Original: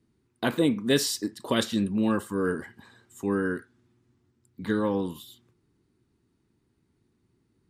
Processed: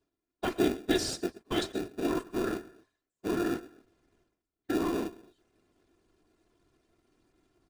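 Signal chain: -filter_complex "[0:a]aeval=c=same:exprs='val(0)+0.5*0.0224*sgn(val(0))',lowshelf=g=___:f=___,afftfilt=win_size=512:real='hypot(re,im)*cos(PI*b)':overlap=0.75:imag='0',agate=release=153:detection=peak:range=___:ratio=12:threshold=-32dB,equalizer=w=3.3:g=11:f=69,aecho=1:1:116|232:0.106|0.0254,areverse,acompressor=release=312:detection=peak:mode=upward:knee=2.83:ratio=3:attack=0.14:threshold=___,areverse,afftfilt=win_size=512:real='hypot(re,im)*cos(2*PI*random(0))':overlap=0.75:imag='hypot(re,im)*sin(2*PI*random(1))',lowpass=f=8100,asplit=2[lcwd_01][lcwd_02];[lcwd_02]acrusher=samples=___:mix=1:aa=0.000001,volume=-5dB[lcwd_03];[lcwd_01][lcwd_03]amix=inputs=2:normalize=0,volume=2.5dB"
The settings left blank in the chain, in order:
-4, 150, -45dB, -44dB, 42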